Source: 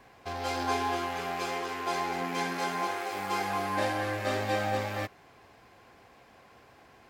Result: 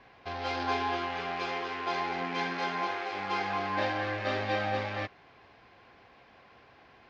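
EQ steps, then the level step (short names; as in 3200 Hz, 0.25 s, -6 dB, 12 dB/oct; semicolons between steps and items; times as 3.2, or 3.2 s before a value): Bessel low-pass 3000 Hz, order 8; high shelf 2200 Hz +9.5 dB; -2.0 dB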